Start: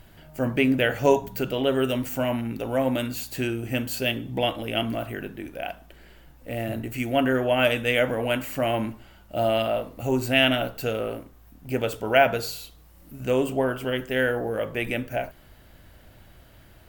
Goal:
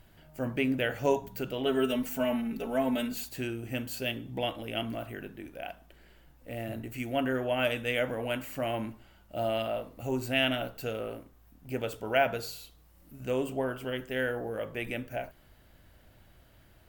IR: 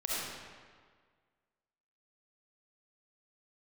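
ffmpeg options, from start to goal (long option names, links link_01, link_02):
-filter_complex "[0:a]asettb=1/sr,asplit=3[link_01][link_02][link_03];[link_01]atrim=end=1.654[link_04];[link_02]atrim=start=1.65:end=3.29,asetpts=PTS-STARTPTS,afade=type=in:duration=0.004:curve=qsin,afade=type=out:start_time=1.636:duration=0.004:curve=qsin,aecho=1:1:4.6:0.97,atrim=end_sample=72324[link_05];[link_03]atrim=start=3.286[link_06];[link_04][link_05]acrossfade=duration=0.004:curve1=hsin:curve2=qsin[link_07];[link_07][link_06]acrossfade=duration=0.004:curve1=qsin:curve2=hsin,volume=-7.5dB"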